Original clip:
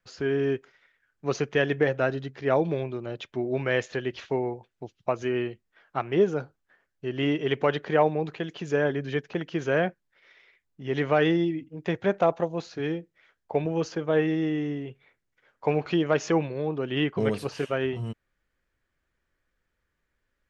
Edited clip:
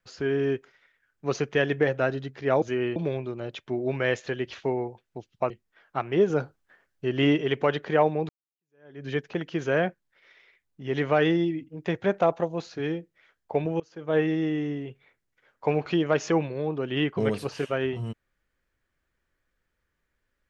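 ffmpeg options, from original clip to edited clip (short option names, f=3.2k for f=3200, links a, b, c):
-filter_complex "[0:a]asplit=8[a][b][c][d][e][f][g][h];[a]atrim=end=2.622[i];[b]atrim=start=5.158:end=5.502[j];[c]atrim=start=2.618:end=5.162[k];[d]atrim=start=5.498:end=6.302[l];[e]atrim=start=6.298:end=7.412,asetpts=PTS-STARTPTS,volume=4dB[m];[f]atrim=start=7.408:end=8.29,asetpts=PTS-STARTPTS,afade=t=out:st=0.878:d=0.004:c=hsin[n];[g]atrim=start=8.29:end=13.8,asetpts=PTS-STARTPTS,afade=t=in:d=0.78:c=exp,afade=t=out:st=5.506:d=0.004:c=hsin:silence=0.0668344[o];[h]atrim=start=13.8,asetpts=PTS-STARTPTS,afade=t=in:d=0.35:c=qua:silence=0.0668344[p];[i][j]acrossfade=d=0.004:c1=hsin:c2=hsin[q];[q][k]acrossfade=d=0.004:c1=hsin:c2=hsin[r];[r][l]acrossfade=d=0.004:c1=hsin:c2=hsin[s];[s][m]acrossfade=d=0.004:c1=hsin:c2=hsin[t];[n][o][p]concat=n=3:v=0:a=1[u];[t][u]acrossfade=d=0.004:c1=hsin:c2=hsin"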